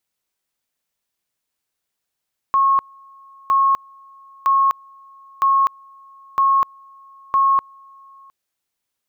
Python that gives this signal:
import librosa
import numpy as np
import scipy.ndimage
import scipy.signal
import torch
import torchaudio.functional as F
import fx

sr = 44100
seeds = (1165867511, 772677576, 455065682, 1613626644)

y = fx.two_level_tone(sr, hz=1090.0, level_db=-12.0, drop_db=30.0, high_s=0.25, low_s=0.71, rounds=6)